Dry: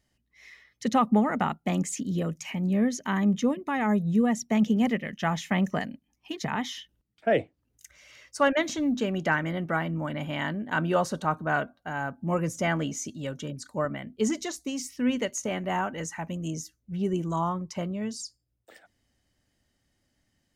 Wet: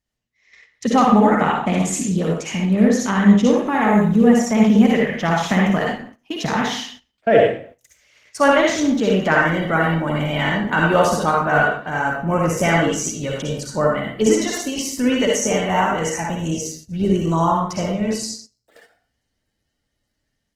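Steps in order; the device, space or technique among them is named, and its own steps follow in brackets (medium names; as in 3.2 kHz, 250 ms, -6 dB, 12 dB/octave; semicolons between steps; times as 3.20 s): speakerphone in a meeting room (reverberation RT60 0.50 s, pre-delay 51 ms, DRR -1.5 dB; level rider gain up to 5 dB; gate -42 dBFS, range -12 dB; trim +2.5 dB; Opus 16 kbps 48 kHz)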